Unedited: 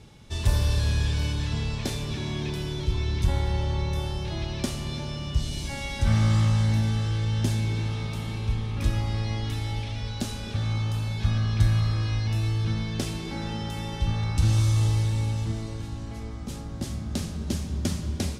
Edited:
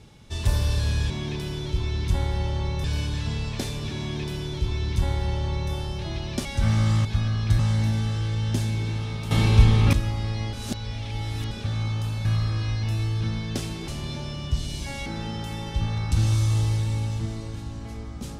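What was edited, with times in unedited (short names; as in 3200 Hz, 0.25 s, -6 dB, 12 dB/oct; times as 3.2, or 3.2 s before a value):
2.24–3.98 copy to 1.1
4.71–5.89 move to 13.32
8.21–8.83 gain +12 dB
9.43–10.41 reverse
11.15–11.69 move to 6.49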